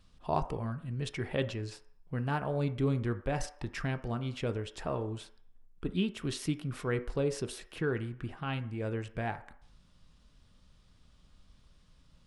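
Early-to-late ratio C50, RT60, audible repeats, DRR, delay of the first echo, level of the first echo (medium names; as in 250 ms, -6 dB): 14.5 dB, 0.60 s, no echo, 9.0 dB, no echo, no echo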